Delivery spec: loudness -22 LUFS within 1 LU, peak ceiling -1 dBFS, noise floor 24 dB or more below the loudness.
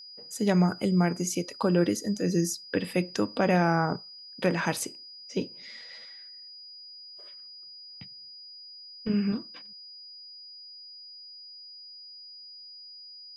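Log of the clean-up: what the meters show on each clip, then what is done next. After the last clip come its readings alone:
steady tone 4900 Hz; tone level -44 dBFS; loudness -28.0 LUFS; peak -11.0 dBFS; loudness target -22.0 LUFS
-> notch 4900 Hz, Q 30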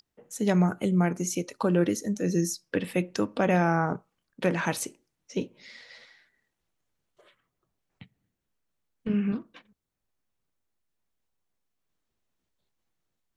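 steady tone none; loudness -27.5 LUFS; peak -11.0 dBFS; loudness target -22.0 LUFS
-> gain +5.5 dB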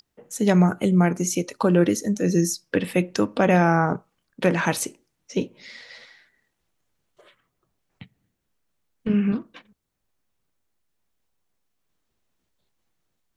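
loudness -22.5 LUFS; peak -5.5 dBFS; noise floor -77 dBFS

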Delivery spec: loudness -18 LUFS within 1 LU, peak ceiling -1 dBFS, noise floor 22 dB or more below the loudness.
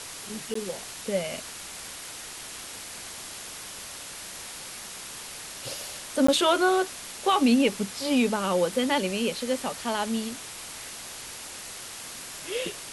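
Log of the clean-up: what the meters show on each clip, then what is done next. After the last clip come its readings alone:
dropouts 2; longest dropout 14 ms; noise floor -41 dBFS; noise floor target -51 dBFS; loudness -29.0 LUFS; peak -10.5 dBFS; loudness target -18.0 LUFS
-> interpolate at 0.54/6.27, 14 ms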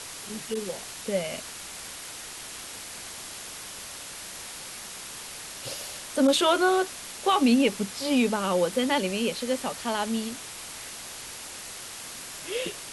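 dropouts 0; noise floor -41 dBFS; noise floor target -51 dBFS
-> denoiser 10 dB, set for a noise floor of -41 dBFS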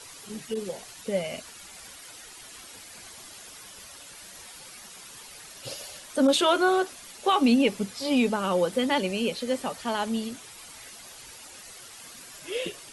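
noise floor -46 dBFS; noise floor target -49 dBFS
-> denoiser 6 dB, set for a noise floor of -46 dBFS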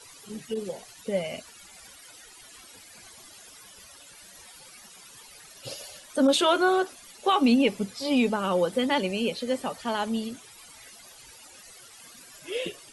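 noise floor -50 dBFS; loudness -26.5 LUFS; peak -11.0 dBFS; loudness target -18.0 LUFS
-> gain +8.5 dB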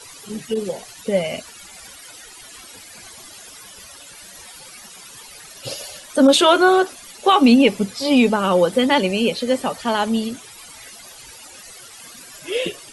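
loudness -18.0 LUFS; peak -2.5 dBFS; noise floor -42 dBFS

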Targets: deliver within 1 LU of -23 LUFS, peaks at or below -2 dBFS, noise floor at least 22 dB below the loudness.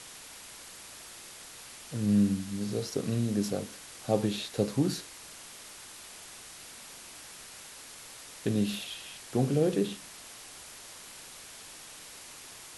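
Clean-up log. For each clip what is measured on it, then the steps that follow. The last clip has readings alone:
noise floor -48 dBFS; noise floor target -53 dBFS; loudness -31.0 LUFS; peak -11.5 dBFS; loudness target -23.0 LUFS
-> denoiser 6 dB, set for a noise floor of -48 dBFS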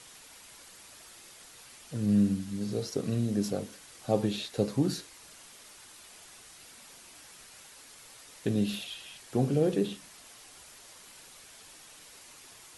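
noise floor -53 dBFS; loudness -31.0 LUFS; peak -12.0 dBFS; loudness target -23.0 LUFS
-> gain +8 dB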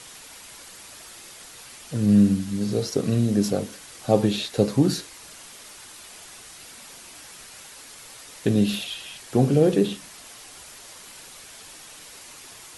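loudness -23.0 LUFS; peak -4.0 dBFS; noise floor -45 dBFS

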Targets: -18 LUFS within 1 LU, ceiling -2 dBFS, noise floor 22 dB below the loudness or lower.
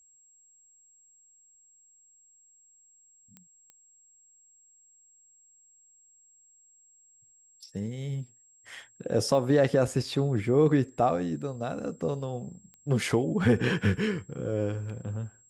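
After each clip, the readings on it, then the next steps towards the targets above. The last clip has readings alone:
clicks 4; steady tone 7600 Hz; tone level -58 dBFS; loudness -28.0 LUFS; peak -10.5 dBFS; loudness target -18.0 LUFS
-> de-click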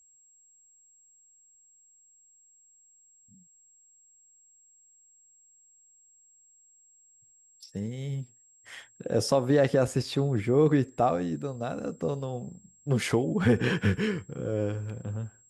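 clicks 0; steady tone 7600 Hz; tone level -58 dBFS
-> notch 7600 Hz, Q 30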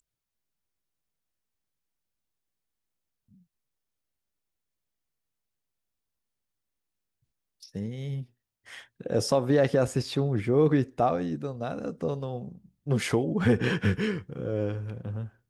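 steady tone none; loudness -28.0 LUFS; peak -10.5 dBFS; loudness target -18.0 LUFS
-> gain +10 dB; limiter -2 dBFS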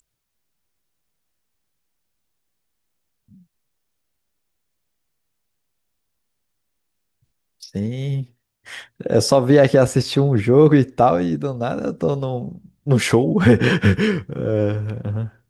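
loudness -18.0 LUFS; peak -2.0 dBFS; noise floor -75 dBFS

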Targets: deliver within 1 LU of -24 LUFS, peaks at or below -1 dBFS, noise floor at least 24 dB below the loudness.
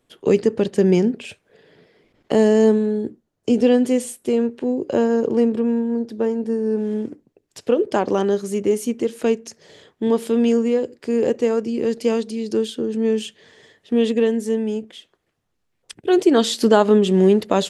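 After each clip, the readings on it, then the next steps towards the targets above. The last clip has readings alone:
loudness -19.5 LUFS; peak -2.0 dBFS; loudness target -24.0 LUFS
-> gain -4.5 dB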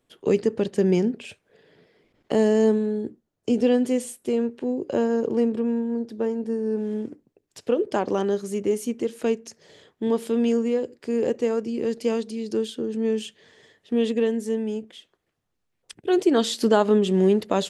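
loudness -24.0 LUFS; peak -6.5 dBFS; noise floor -76 dBFS

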